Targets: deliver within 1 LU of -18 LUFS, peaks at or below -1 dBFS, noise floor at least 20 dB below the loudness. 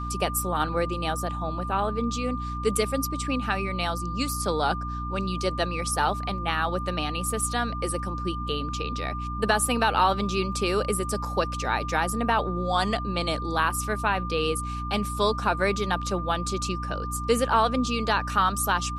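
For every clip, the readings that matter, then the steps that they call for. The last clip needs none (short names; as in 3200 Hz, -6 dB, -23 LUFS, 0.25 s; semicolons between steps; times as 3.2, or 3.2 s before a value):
hum 60 Hz; harmonics up to 300 Hz; hum level -31 dBFS; steady tone 1200 Hz; tone level -33 dBFS; loudness -26.5 LUFS; peak -7.5 dBFS; loudness target -18.0 LUFS
-> notches 60/120/180/240/300 Hz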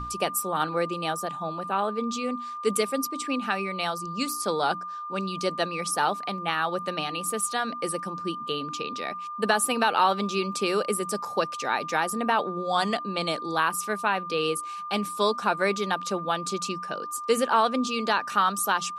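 hum none; steady tone 1200 Hz; tone level -33 dBFS
-> notch 1200 Hz, Q 30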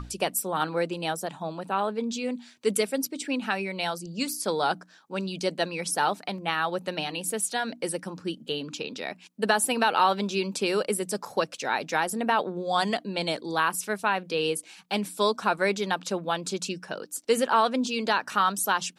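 steady tone none; loudness -28.0 LUFS; peak -8.0 dBFS; loudness target -18.0 LUFS
-> gain +10 dB; limiter -1 dBFS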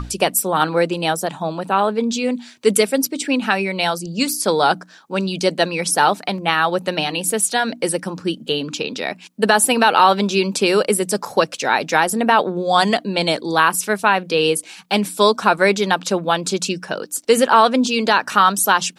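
loudness -18.0 LUFS; peak -1.0 dBFS; noise floor -45 dBFS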